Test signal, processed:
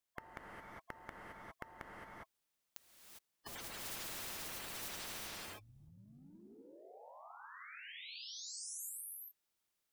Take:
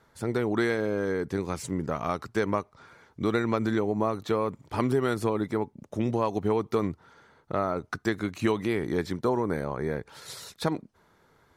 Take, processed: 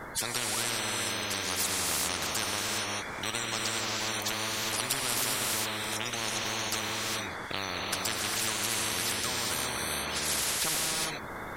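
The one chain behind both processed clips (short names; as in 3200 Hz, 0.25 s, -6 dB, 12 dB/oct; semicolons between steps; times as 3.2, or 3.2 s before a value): bin magnitudes rounded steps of 30 dB; dynamic EQ 430 Hz, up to -6 dB, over -42 dBFS, Q 1.3; non-linear reverb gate 0.43 s rising, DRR -1.5 dB; spectral compressor 10:1; gain -1 dB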